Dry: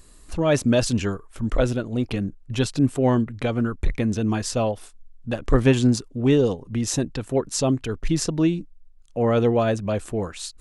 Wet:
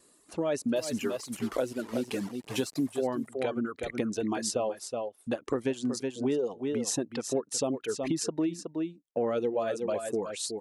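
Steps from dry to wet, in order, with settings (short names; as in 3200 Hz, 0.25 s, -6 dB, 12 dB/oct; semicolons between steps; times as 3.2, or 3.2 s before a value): 0.76–2.91 delta modulation 64 kbps, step -30 dBFS; HPF 360 Hz 12 dB/oct; high shelf 5800 Hz +6.5 dB; reverb removal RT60 1.9 s; tilt shelf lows +6 dB, about 690 Hz; gate with hold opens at -53 dBFS; AGC gain up to 7 dB; echo 0.37 s -11 dB; compressor 4:1, threshold -23 dBFS, peak gain reduction 12 dB; gain -4.5 dB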